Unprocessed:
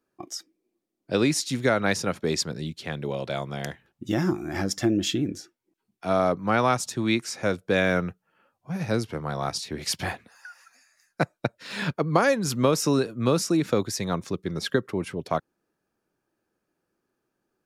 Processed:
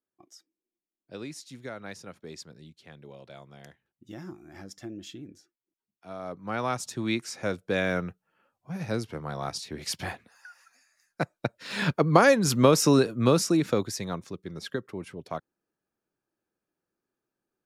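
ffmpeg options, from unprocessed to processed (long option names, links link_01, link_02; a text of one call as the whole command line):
ffmpeg -i in.wav -af "volume=2.5dB,afade=type=in:start_time=6.19:duration=0.75:silence=0.237137,afade=type=in:start_time=11.33:duration=0.64:silence=0.446684,afade=type=out:start_time=13.04:duration=1.26:silence=0.281838" out.wav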